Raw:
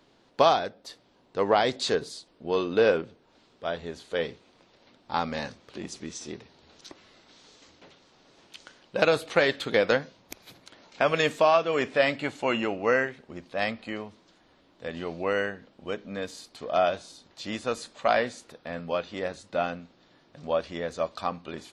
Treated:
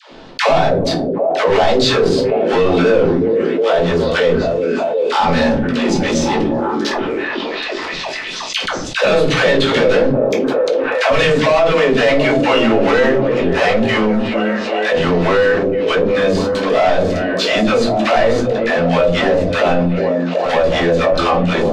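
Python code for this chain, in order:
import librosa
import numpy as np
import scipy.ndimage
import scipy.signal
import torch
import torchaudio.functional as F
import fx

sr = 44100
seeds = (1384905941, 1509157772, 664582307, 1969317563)

p1 = fx.hum_notches(x, sr, base_hz=50, count=8)
p2 = fx.leveller(p1, sr, passes=5)
p3 = fx.air_absorb(p2, sr, metres=96.0)
p4 = fx.dispersion(p3, sr, late='lows', ms=112.0, hz=560.0)
p5 = p4 + fx.echo_stepped(p4, sr, ms=368, hz=290.0, octaves=0.7, feedback_pct=70, wet_db=-6.5, dry=0)
p6 = fx.room_shoebox(p5, sr, seeds[0], volume_m3=120.0, walls='furnished', distance_m=1.5)
p7 = fx.env_flatten(p6, sr, amount_pct=70)
y = F.gain(torch.from_numpy(p7), -9.0).numpy()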